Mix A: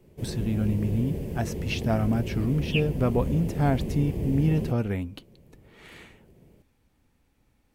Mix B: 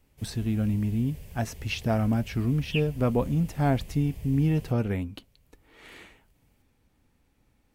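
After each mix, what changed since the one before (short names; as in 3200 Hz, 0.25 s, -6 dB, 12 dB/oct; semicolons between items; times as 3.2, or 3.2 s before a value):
background: add passive tone stack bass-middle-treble 10-0-10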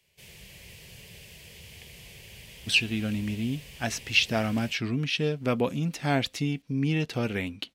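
speech: entry +2.45 s; master: add weighting filter D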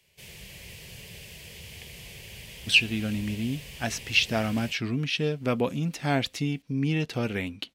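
background +3.5 dB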